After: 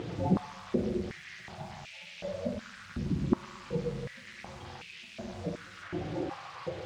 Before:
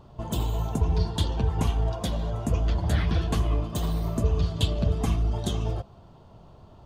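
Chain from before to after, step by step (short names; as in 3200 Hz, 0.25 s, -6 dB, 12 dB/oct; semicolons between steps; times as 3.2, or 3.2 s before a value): spectral contrast raised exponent 3.5; bell 4400 Hz -9.5 dB 0.74 oct; compressor 2.5:1, threshold -46 dBFS, peak gain reduction 17.5 dB; formant-preserving pitch shift -3.5 st; requantised 12-bit, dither none; air absorption 130 m; reverb RT60 1.4 s, pre-delay 6 ms, DRR -0.5 dB; maximiser +29 dB; stepped high-pass 2.7 Hz 340–2500 Hz; gain -2 dB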